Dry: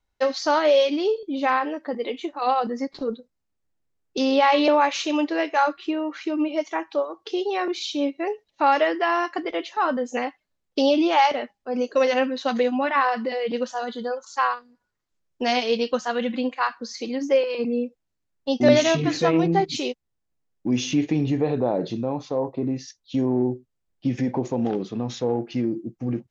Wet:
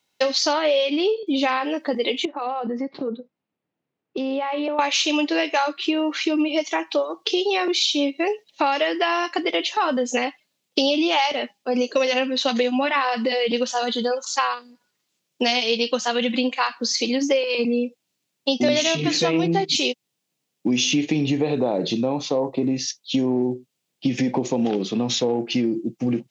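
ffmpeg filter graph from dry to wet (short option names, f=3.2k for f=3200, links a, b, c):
-filter_complex "[0:a]asettb=1/sr,asplit=3[a][b][c];[a]atrim=end=0.534[d];[b]atrim=start=0.53:end=1.27,asetpts=PTS-STARTPTS,afade=t=in:d=0.004:c=qsin,afade=t=out:st=0.736:d=0.004:c=qsin,lowpass=5.9k,bass=f=250:g=-1,treble=f=4k:g=-10[e];[c]atrim=start=1.266[f];[d][e]acrossfade=d=0.004:c1=hsin:c2=qsin[g];[g][f]acrossfade=d=0.004:c1=qsin:c2=hsin,asettb=1/sr,asplit=3[h][i][j];[h]atrim=end=2.254[k];[i]atrim=start=2.25:end=4.79,asetpts=PTS-STARTPTS,afade=t=in:d=0.004:c=qsin,afade=t=out:st=2.536:d=0.004:c=qsin,acompressor=threshold=-30dB:ratio=5:attack=3.2:release=140:knee=1:detection=peak,lowpass=1.6k[l];[j]atrim=start=4.786[m];[k][l]acrossfade=d=0.004:c1=hsin:c2=qsin[n];[n][m]acrossfade=d=0.004:c1=qsin:c2=hsin,highpass=f=140:w=0.5412,highpass=f=140:w=1.3066,highshelf=f=2.1k:t=q:w=1.5:g=6.5,acompressor=threshold=-26dB:ratio=4,volume=7.5dB"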